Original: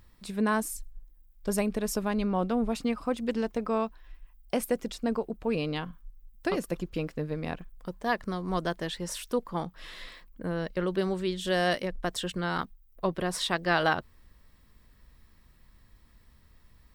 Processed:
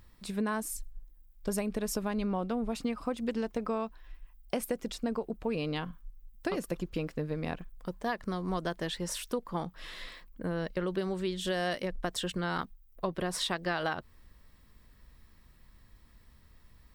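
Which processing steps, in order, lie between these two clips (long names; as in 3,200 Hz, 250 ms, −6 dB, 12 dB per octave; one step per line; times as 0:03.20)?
downward compressor, threshold −28 dBFS, peak gain reduction 8.5 dB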